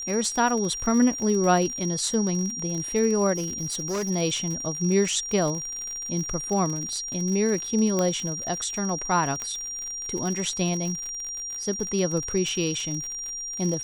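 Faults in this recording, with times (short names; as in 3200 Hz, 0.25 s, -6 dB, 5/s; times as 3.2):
crackle 67/s -30 dBFS
tone 5700 Hz -31 dBFS
3.34–4.11 clipped -24.5 dBFS
7.99 pop -12 dBFS
9.42 pop -16 dBFS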